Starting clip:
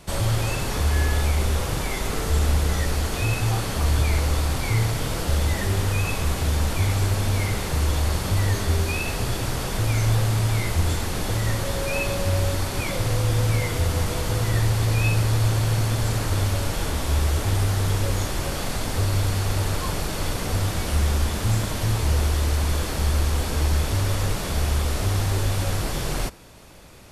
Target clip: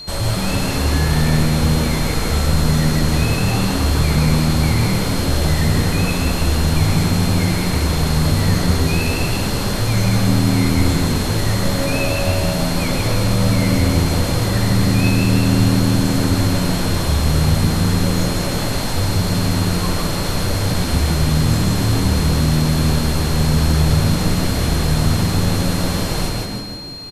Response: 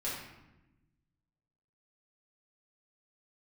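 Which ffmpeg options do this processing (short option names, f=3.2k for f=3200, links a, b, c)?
-filter_complex "[0:a]acontrast=40,asplit=7[a][b][c][d][e][f][g];[b]adelay=158,afreqshift=80,volume=-4dB[h];[c]adelay=316,afreqshift=160,volume=-10.4dB[i];[d]adelay=474,afreqshift=240,volume=-16.8dB[j];[e]adelay=632,afreqshift=320,volume=-23.1dB[k];[f]adelay=790,afreqshift=400,volume=-29.5dB[l];[g]adelay=948,afreqshift=480,volume=-35.9dB[m];[a][h][i][j][k][l][m]amix=inputs=7:normalize=0,asplit=2[n][o];[1:a]atrim=start_sample=2205,adelay=133[p];[o][p]afir=irnorm=-1:irlink=0,volume=-9dB[q];[n][q]amix=inputs=2:normalize=0,aeval=exprs='val(0)+0.0398*sin(2*PI*4200*n/s)':c=same,volume=-3dB"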